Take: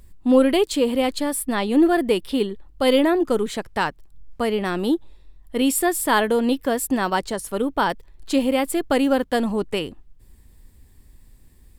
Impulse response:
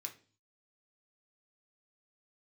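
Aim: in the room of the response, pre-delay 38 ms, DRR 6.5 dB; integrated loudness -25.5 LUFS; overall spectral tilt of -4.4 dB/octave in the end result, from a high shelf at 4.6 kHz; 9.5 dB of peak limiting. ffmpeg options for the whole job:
-filter_complex "[0:a]highshelf=f=4600:g=-7.5,alimiter=limit=0.188:level=0:latency=1,asplit=2[s0][s1];[1:a]atrim=start_sample=2205,adelay=38[s2];[s1][s2]afir=irnorm=-1:irlink=0,volume=0.708[s3];[s0][s3]amix=inputs=2:normalize=0,volume=0.891"

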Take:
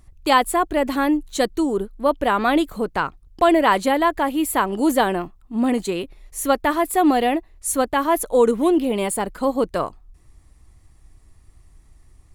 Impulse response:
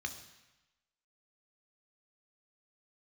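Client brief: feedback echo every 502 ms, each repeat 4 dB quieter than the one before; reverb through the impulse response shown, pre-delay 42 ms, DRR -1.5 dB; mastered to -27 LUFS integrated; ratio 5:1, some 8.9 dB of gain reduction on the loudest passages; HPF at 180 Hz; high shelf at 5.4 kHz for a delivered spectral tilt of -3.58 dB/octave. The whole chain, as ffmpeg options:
-filter_complex "[0:a]highpass=180,highshelf=f=5400:g=-3.5,acompressor=threshold=0.0794:ratio=5,aecho=1:1:502|1004|1506|2008|2510|3012|3514|4016|4518:0.631|0.398|0.25|0.158|0.0994|0.0626|0.0394|0.0249|0.0157,asplit=2[s0][s1];[1:a]atrim=start_sample=2205,adelay=42[s2];[s1][s2]afir=irnorm=-1:irlink=0,volume=1.12[s3];[s0][s3]amix=inputs=2:normalize=0,volume=0.562"

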